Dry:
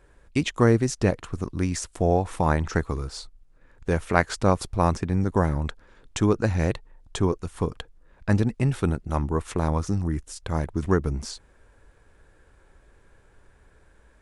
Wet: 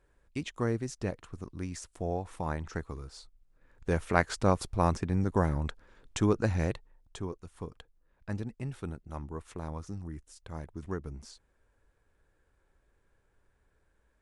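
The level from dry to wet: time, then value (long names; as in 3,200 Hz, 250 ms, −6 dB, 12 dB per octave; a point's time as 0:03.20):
0:03.19 −12 dB
0:03.92 −5 dB
0:06.54 −5 dB
0:07.25 −14.5 dB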